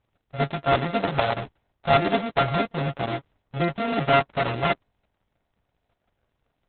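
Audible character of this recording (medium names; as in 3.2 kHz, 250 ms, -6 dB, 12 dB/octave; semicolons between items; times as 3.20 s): a buzz of ramps at a fixed pitch in blocks of 64 samples; Opus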